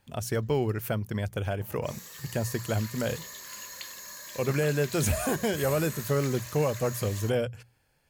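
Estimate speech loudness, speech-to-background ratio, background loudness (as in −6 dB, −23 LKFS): −29.5 LKFS, 11.0 dB, −40.5 LKFS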